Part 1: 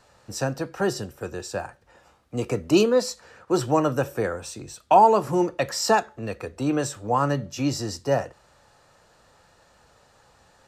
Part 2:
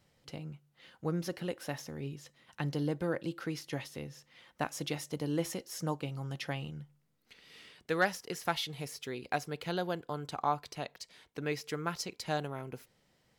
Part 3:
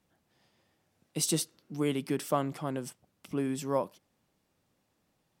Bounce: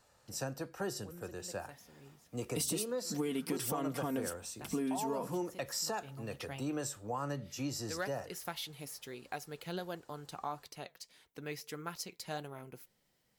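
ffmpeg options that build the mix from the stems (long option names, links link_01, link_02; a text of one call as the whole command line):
ffmpeg -i stem1.wav -i stem2.wav -i stem3.wav -filter_complex "[0:a]volume=-11.5dB,asplit=2[link_01][link_02];[1:a]flanger=delay=2.1:depth=4.3:regen=74:speed=1.6:shape=triangular,volume=-2.5dB,afade=type=in:start_time=5.43:duration=0.5:silence=0.316228[link_03];[2:a]aecho=1:1:4.3:0.7,alimiter=limit=-23.5dB:level=0:latency=1:release=64,adelay=1400,volume=1dB[link_04];[link_02]apad=whole_len=590269[link_05];[link_03][link_05]sidechaincompress=threshold=-45dB:ratio=8:attack=16:release=102[link_06];[link_01][link_06]amix=inputs=2:normalize=0,highshelf=frequency=7200:gain=5,alimiter=level_in=1.5dB:limit=-24dB:level=0:latency=1:release=167,volume=-1.5dB,volume=0dB[link_07];[link_04][link_07]amix=inputs=2:normalize=0,highshelf=frequency=11000:gain=10,acompressor=threshold=-32dB:ratio=6" out.wav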